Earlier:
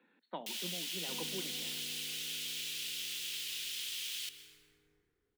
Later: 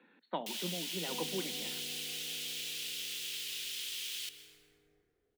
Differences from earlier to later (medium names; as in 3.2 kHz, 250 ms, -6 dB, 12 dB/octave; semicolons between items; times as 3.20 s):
speech +5.5 dB; second sound: add resonant low-pass 660 Hz, resonance Q 3.4